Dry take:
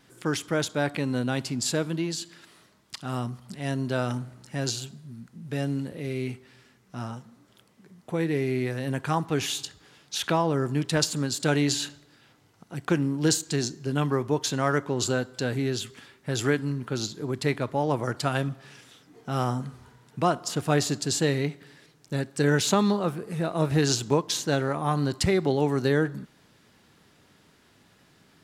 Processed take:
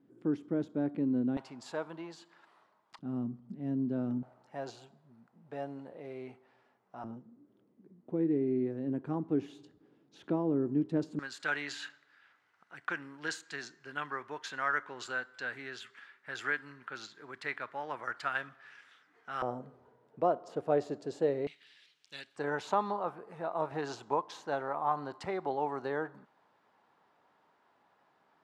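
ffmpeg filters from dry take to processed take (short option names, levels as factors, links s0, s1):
-af "asetnsamples=n=441:p=0,asendcmd='1.37 bandpass f 900;2.99 bandpass f 250;4.23 bandpass f 760;7.04 bandpass f 300;11.19 bandpass f 1600;19.42 bandpass f 540;21.47 bandpass f 3100;22.36 bandpass f 880',bandpass=f=280:t=q:w=2.2:csg=0"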